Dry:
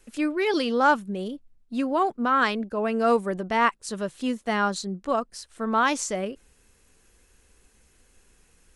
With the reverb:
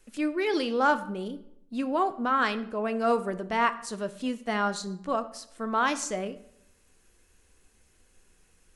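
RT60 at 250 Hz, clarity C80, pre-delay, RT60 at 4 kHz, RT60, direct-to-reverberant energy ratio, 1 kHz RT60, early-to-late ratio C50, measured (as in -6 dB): 0.80 s, 18.0 dB, 3 ms, 0.50 s, 0.75 s, 10.5 dB, 0.75 s, 15.0 dB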